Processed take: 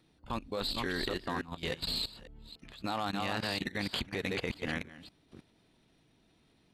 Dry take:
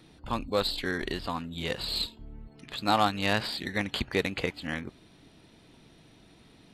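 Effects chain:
delay that plays each chunk backwards 284 ms, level −5.5 dB
output level in coarse steps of 17 dB

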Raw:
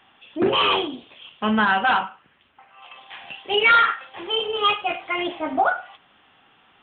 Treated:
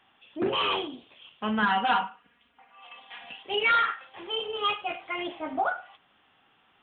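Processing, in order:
0:01.62–0:03.43: comb filter 4.2 ms, depth 95%
level −7.5 dB

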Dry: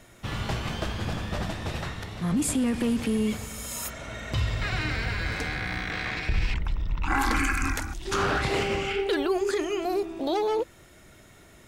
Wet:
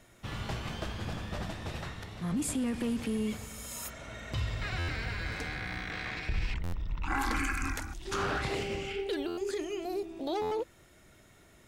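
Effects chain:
0:08.54–0:10.27: dynamic equaliser 1,200 Hz, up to −8 dB, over −46 dBFS, Q 1.1
buffer that repeats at 0:04.78/0:06.63/0:09.27/0:10.41, samples 512, times 8
level −6.5 dB

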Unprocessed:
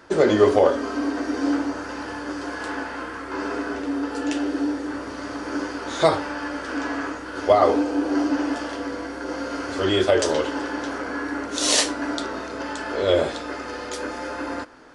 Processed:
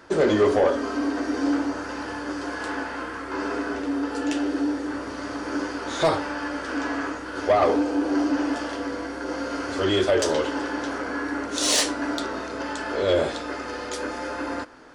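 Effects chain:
soft clipping −12.5 dBFS, distortion −15 dB

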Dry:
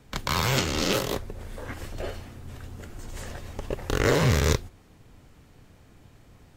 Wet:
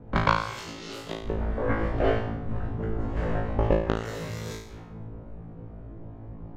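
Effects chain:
low-pass that shuts in the quiet parts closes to 650 Hz, open at −19 dBFS
gate with flip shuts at −17 dBFS, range −26 dB
flutter between parallel walls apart 3.1 metres, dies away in 0.61 s
level +8 dB

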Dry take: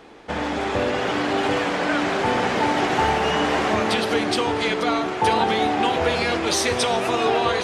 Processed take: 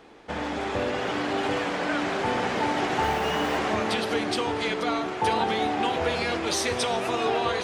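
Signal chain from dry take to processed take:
0:03.02–0:03.57: background noise white −48 dBFS
level −5 dB

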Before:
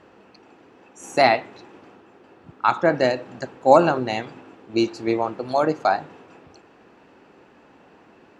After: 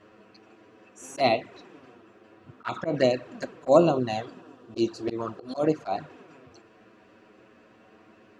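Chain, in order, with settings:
0:01.28–0:02.67: dynamic equaliser 1,300 Hz, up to −4 dB, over −30 dBFS, Q 1
flanger swept by the level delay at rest 10 ms, full sweep at −15 dBFS
0:03.73–0:05.64: parametric band 2,200 Hz −10.5 dB 0.37 octaves
volume swells 110 ms
Butterworth band-reject 850 Hz, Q 6.2

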